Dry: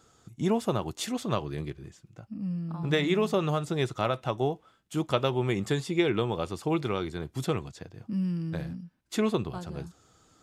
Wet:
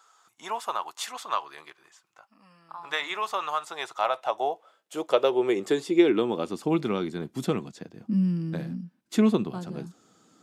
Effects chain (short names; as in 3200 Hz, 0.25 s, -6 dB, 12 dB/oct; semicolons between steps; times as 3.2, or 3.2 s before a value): high-pass sweep 1000 Hz -> 210 Hz, 3.61–6.74